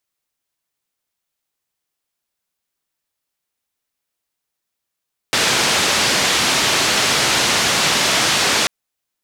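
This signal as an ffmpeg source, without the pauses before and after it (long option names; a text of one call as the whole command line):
ffmpeg -f lavfi -i "anoisesrc=color=white:duration=3.34:sample_rate=44100:seed=1,highpass=frequency=99,lowpass=frequency=5400,volume=-5.8dB" out.wav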